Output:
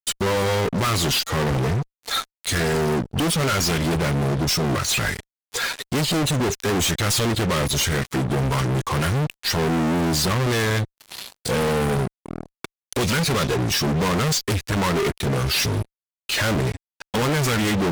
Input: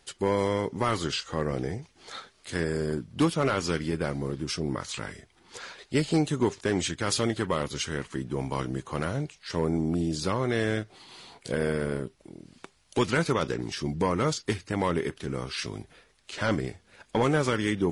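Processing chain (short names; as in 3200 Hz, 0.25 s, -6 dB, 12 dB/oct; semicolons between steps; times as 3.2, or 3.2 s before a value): per-bin expansion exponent 1.5; sample leveller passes 1; dynamic EQ 710 Hz, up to -7 dB, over -42 dBFS, Q 0.92; in parallel at -3 dB: compressor 6:1, threshold -40 dBFS, peak gain reduction 17.5 dB; on the sum: fuzz box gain 46 dB, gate -55 dBFS; gain -6.5 dB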